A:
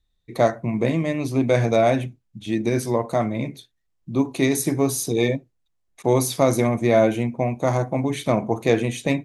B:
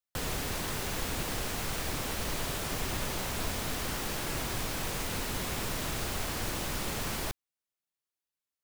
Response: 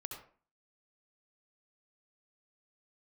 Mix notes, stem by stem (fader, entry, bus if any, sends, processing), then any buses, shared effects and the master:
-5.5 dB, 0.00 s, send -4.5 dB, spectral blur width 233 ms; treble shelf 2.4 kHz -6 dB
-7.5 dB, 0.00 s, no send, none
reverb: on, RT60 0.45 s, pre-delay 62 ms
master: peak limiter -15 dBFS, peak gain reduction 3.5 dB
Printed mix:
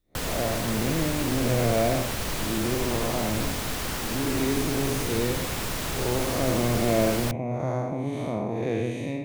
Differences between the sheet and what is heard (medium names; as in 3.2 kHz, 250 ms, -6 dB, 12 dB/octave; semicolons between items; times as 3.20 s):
stem B -7.5 dB -> +4.0 dB; master: missing peak limiter -15 dBFS, peak gain reduction 3.5 dB